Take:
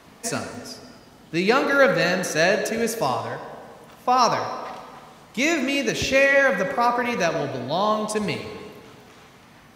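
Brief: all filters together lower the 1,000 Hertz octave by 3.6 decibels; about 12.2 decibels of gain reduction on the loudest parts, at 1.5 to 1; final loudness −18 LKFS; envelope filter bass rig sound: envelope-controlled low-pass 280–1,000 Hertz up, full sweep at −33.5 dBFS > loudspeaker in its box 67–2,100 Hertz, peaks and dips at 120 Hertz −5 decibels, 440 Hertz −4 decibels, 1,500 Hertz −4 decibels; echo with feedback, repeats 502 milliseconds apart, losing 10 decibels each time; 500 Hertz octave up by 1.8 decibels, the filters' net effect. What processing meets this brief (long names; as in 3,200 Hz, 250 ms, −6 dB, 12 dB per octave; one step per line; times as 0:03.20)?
parametric band 500 Hz +5.5 dB
parametric band 1,000 Hz −6.5 dB
downward compressor 1.5 to 1, threshold −45 dBFS
repeating echo 502 ms, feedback 32%, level −10 dB
envelope-controlled low-pass 280–1,000 Hz up, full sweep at −33.5 dBFS
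loudspeaker in its box 67–2,100 Hz, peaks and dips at 120 Hz −5 dB, 440 Hz −4 dB, 1,500 Hz −4 dB
level +12 dB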